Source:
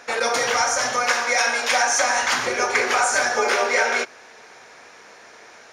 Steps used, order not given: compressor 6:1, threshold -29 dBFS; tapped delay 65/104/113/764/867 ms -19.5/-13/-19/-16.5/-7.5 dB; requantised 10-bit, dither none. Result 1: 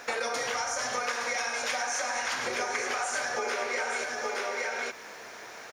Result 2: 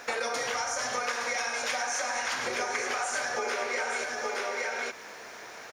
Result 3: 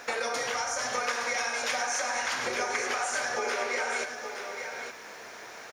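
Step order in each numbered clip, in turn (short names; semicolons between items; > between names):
requantised > tapped delay > compressor; tapped delay > requantised > compressor; requantised > compressor > tapped delay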